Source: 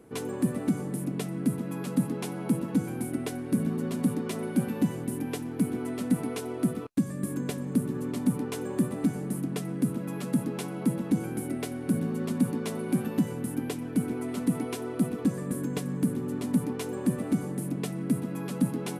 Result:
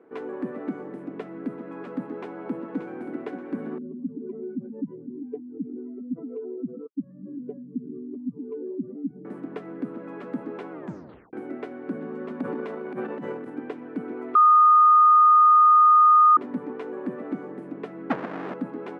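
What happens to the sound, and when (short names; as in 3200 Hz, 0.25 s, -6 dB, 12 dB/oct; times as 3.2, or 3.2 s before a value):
2.2–3.23 echo throw 0.58 s, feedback 40%, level -9 dB
3.78–9.25 spectral contrast raised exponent 2.7
10.72 tape stop 0.61 s
12.4–13.5 transient shaper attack -11 dB, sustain +7 dB
14.35–16.37 bleep 1230 Hz -13 dBFS
18.1–18.54 half-waves squared off
whole clip: Chebyshev band-pass 340–1700 Hz, order 2; gain +1.5 dB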